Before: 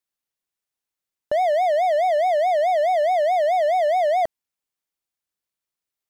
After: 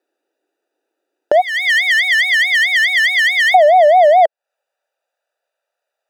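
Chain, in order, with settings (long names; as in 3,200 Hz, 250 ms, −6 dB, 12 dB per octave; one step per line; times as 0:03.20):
adaptive Wiener filter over 41 samples
elliptic high-pass filter 320 Hz, stop band 70 dB, from 0:01.40 1,700 Hz, from 0:03.54 560 Hz
downward compressor 10 to 1, threshold −38 dBFS, peak gain reduction 16 dB
boost into a limiter +31.5 dB
level −1 dB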